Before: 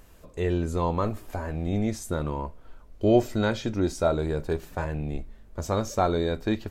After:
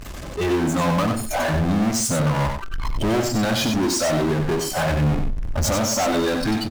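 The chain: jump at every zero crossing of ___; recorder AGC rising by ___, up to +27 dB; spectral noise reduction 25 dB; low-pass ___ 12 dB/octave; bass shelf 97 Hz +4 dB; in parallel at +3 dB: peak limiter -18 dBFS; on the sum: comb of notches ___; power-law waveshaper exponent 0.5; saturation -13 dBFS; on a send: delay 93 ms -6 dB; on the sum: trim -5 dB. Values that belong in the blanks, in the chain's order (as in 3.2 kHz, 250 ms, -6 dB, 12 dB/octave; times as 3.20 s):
-29.5 dBFS, 8.4 dB/s, 7.9 kHz, 470 Hz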